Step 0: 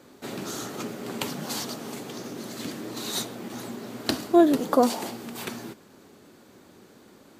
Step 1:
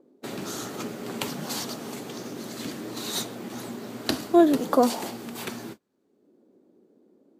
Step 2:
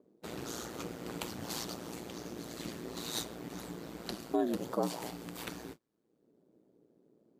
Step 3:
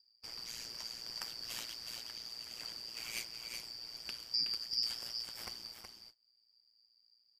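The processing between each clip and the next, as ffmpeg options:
ffmpeg -i in.wav -filter_complex "[0:a]agate=range=-27dB:threshold=-41dB:ratio=16:detection=peak,acrossover=split=230|500|5700[link_01][link_02][link_03][link_04];[link_02]acompressor=mode=upward:threshold=-39dB:ratio=2.5[link_05];[link_01][link_05][link_03][link_04]amix=inputs=4:normalize=0" out.wav
ffmpeg -i in.wav -af "alimiter=limit=-15dB:level=0:latency=1:release=282,aeval=exprs='val(0)*sin(2*PI*58*n/s)':channel_layout=same,volume=-4.5dB" out.wav
ffmpeg -i in.wav -filter_complex "[0:a]afftfilt=real='real(if(lt(b,272),68*(eq(floor(b/68),0)*1+eq(floor(b/68),1)*2+eq(floor(b/68),2)*3+eq(floor(b/68),3)*0)+mod(b,68),b),0)':imag='imag(if(lt(b,272),68*(eq(floor(b/68),0)*1+eq(floor(b/68),1)*2+eq(floor(b/68),2)*3+eq(floor(b/68),3)*0)+mod(b,68),b),0)':win_size=2048:overlap=0.75,asplit=2[link_01][link_02];[link_02]aecho=0:1:371:0.501[link_03];[link_01][link_03]amix=inputs=2:normalize=0,volume=-4.5dB" out.wav

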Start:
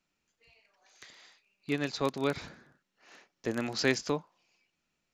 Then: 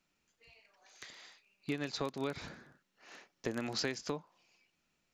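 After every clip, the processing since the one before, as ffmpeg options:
ffmpeg -i in.wav -af "acompressor=threshold=-34dB:ratio=8,volume=1.5dB" out.wav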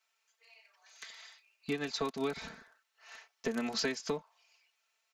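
ffmpeg -i in.wav -filter_complex "[0:a]aecho=1:1:4.5:0.92,acrossover=split=590|2000[link_01][link_02][link_03];[link_01]aeval=exprs='sgn(val(0))*max(abs(val(0))-0.00158,0)':channel_layout=same[link_04];[link_04][link_02][link_03]amix=inputs=3:normalize=0" out.wav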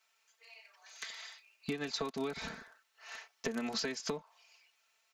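ffmpeg -i in.wav -af "acompressor=threshold=-38dB:ratio=6,volume=4.5dB" out.wav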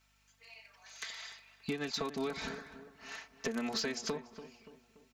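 ffmpeg -i in.wav -filter_complex "[0:a]aeval=exprs='val(0)+0.000178*(sin(2*PI*50*n/s)+sin(2*PI*2*50*n/s)/2+sin(2*PI*3*50*n/s)/3+sin(2*PI*4*50*n/s)/4+sin(2*PI*5*50*n/s)/5)':channel_layout=same,asoftclip=type=tanh:threshold=-25.5dB,asplit=2[link_01][link_02];[link_02]adelay=288,lowpass=frequency=1500:poles=1,volume=-12dB,asplit=2[link_03][link_04];[link_04]adelay=288,lowpass=frequency=1500:poles=1,volume=0.48,asplit=2[link_05][link_06];[link_06]adelay=288,lowpass=frequency=1500:poles=1,volume=0.48,asplit=2[link_07][link_08];[link_08]adelay=288,lowpass=frequency=1500:poles=1,volume=0.48,asplit=2[link_09][link_10];[link_10]adelay=288,lowpass=frequency=1500:poles=1,volume=0.48[link_11];[link_01][link_03][link_05][link_07][link_09][link_11]amix=inputs=6:normalize=0,volume=1.5dB" out.wav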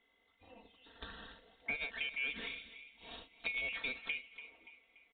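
ffmpeg -i in.wav -af "afftfilt=real='real(if(lt(b,920),b+92*(1-2*mod(floor(b/92),2)),b),0)':imag='imag(if(lt(b,920),b+92*(1-2*mod(floor(b/92),2)),b),0)':win_size=2048:overlap=0.75,aresample=8000,aresample=44100,volume=-2.5dB" out.wav

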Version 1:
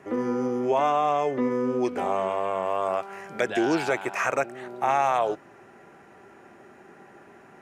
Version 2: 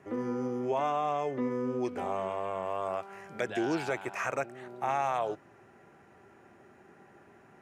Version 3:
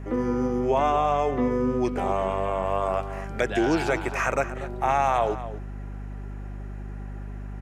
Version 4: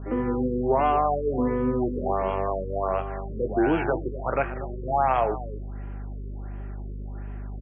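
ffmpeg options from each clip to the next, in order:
ffmpeg -i in.wav -af "equalizer=frequency=89:width_type=o:width=1.5:gain=7.5,volume=-7.5dB" out.wav
ffmpeg -i in.wav -filter_complex "[0:a]aeval=exprs='val(0)+0.00708*(sin(2*PI*50*n/s)+sin(2*PI*2*50*n/s)/2+sin(2*PI*3*50*n/s)/3+sin(2*PI*4*50*n/s)/4+sin(2*PI*5*50*n/s)/5)':channel_layout=same,asplit=2[link_01][link_02];[link_02]adelay=239.1,volume=-13dB,highshelf=frequency=4000:gain=-5.38[link_03];[link_01][link_03]amix=inputs=2:normalize=0,volume=7.5dB" out.wav
ffmpeg -i in.wav -filter_complex "[0:a]asplit=2[link_01][link_02];[link_02]adelay=23,volume=-12dB[link_03];[link_01][link_03]amix=inputs=2:normalize=0,afftfilt=real='re*lt(b*sr/1024,540*pow(3400/540,0.5+0.5*sin(2*PI*1.4*pts/sr)))':imag='im*lt(b*sr/1024,540*pow(3400/540,0.5+0.5*sin(2*PI*1.4*pts/sr)))':win_size=1024:overlap=0.75" out.wav

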